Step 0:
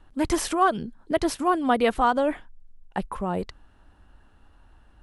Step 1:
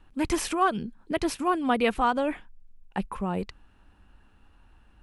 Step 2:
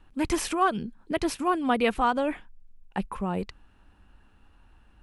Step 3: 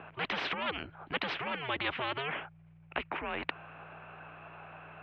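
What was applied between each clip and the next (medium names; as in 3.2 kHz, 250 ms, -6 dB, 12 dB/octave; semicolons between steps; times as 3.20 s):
graphic EQ with 31 bands 200 Hz +4 dB, 630 Hz -4 dB, 2.5 kHz +7 dB; trim -2.5 dB
no audible change
hum 60 Hz, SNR 14 dB; mistuned SSB -140 Hz 500–2900 Hz; spectrum-flattening compressor 4:1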